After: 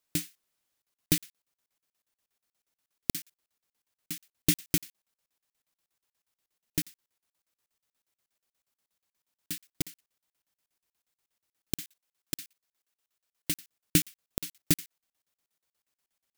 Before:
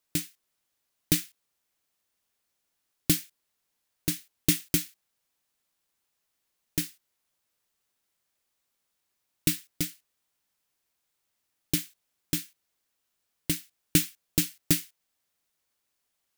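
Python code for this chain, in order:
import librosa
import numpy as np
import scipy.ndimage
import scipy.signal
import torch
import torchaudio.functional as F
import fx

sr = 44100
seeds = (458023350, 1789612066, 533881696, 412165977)

y = fx.low_shelf(x, sr, hz=340.0, db=-8.0, at=(11.8, 13.58))
y = fx.buffer_crackle(y, sr, first_s=0.82, period_s=0.12, block=2048, kind='zero')
y = F.gain(torch.from_numpy(y), -1.5).numpy()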